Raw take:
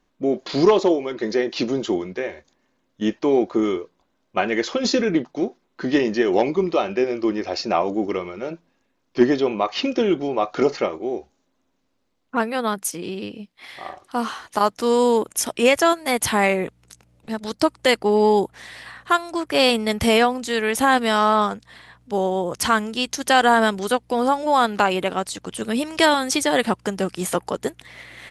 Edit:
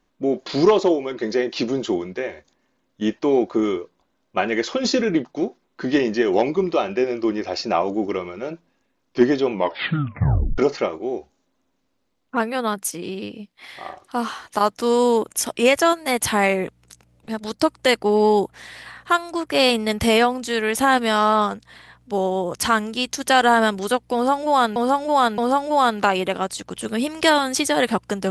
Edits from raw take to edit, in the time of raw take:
0:09.50: tape stop 1.08 s
0:24.14–0:24.76: repeat, 3 plays

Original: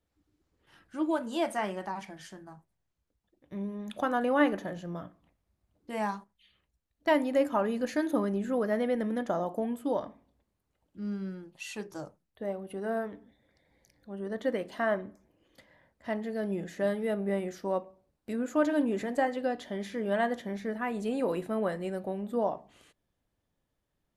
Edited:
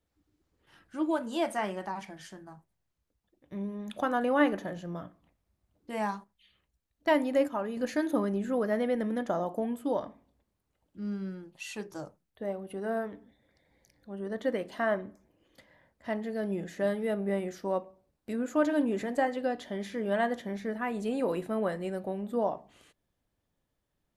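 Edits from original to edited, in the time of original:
0:07.48–0:07.77: clip gain −5 dB

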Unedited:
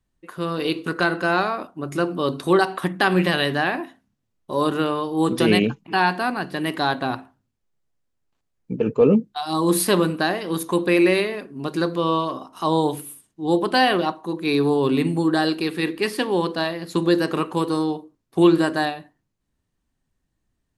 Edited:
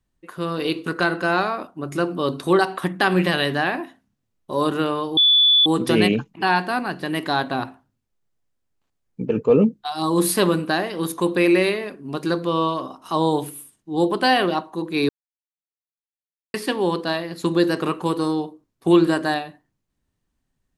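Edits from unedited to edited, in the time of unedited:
0:05.17: insert tone 3,460 Hz −11.5 dBFS 0.49 s
0:14.60–0:16.05: silence

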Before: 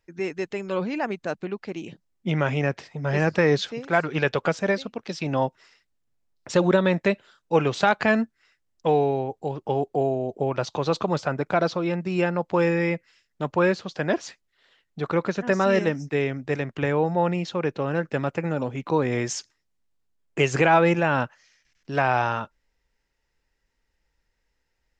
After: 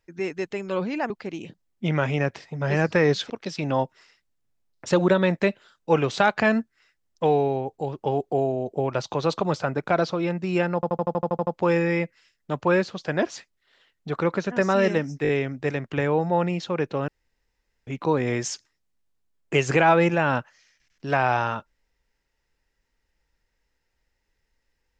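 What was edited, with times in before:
0:01.10–0:01.53: remove
0:03.73–0:04.93: remove
0:12.38: stutter 0.08 s, 10 plays
0:16.14: stutter 0.02 s, 4 plays
0:17.93–0:18.72: fill with room tone

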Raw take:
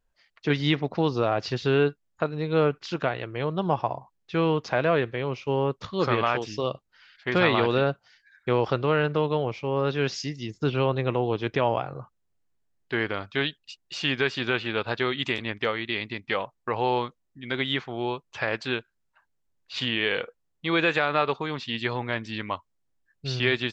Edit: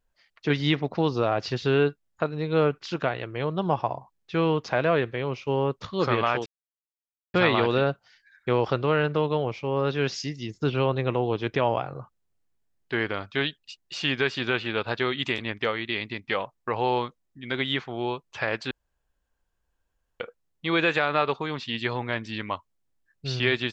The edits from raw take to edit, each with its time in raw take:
0:06.46–0:07.34: silence
0:18.71–0:20.20: fill with room tone

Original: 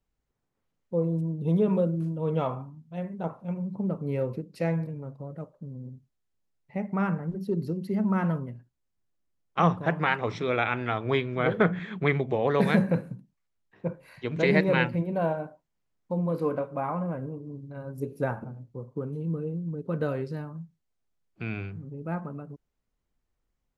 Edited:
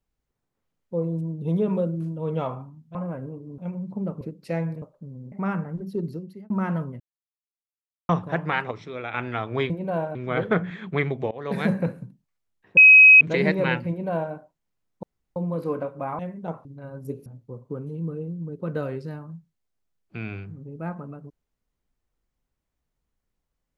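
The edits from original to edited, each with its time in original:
0:02.95–0:03.41: swap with 0:16.95–0:17.58
0:04.04–0:04.32: remove
0:04.93–0:05.42: remove
0:05.92–0:06.86: remove
0:07.55–0:08.04: fade out
0:08.54–0:09.63: silence
0:10.25–0:10.68: clip gain −7.5 dB
0:12.40–0:12.81: fade in, from −21 dB
0:13.86–0:14.30: beep over 2,540 Hz −7 dBFS
0:14.98–0:15.43: duplicate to 0:11.24
0:16.12: splice in room tone 0.33 s
0:18.19–0:18.52: remove

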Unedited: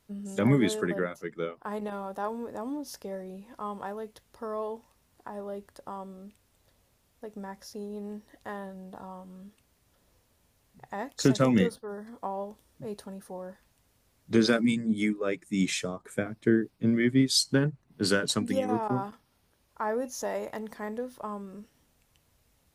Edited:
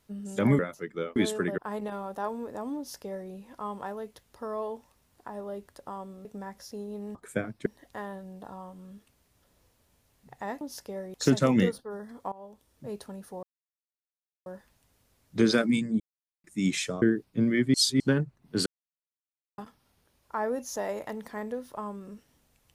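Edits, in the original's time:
0:00.59–0:01.01: move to 0:01.58
0:02.77–0:03.30: duplicate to 0:11.12
0:06.25–0:07.27: remove
0:12.30–0:12.88: fade in, from −17.5 dB
0:13.41: splice in silence 1.03 s
0:14.95–0:15.39: silence
0:15.97–0:16.48: move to 0:08.17
0:17.20–0:17.46: reverse
0:18.12–0:19.04: silence

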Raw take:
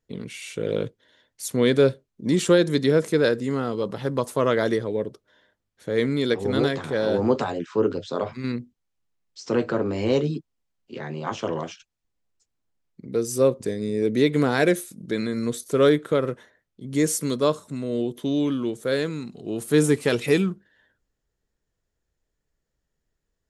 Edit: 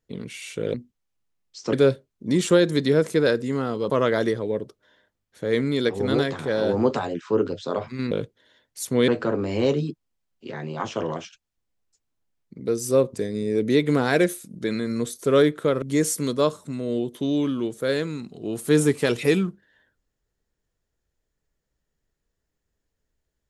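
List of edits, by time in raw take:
0:00.74–0:01.71: swap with 0:08.56–0:09.55
0:03.88–0:04.35: remove
0:16.29–0:16.85: remove

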